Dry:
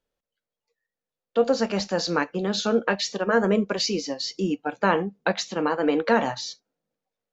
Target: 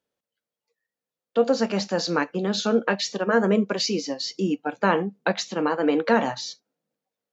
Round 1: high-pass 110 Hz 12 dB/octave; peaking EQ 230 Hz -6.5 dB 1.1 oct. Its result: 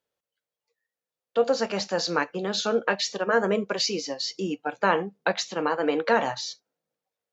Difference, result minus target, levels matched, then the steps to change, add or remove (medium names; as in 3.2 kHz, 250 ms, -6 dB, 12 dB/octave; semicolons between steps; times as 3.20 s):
250 Hz band -4.5 dB
change: peaking EQ 230 Hz +2 dB 1.1 oct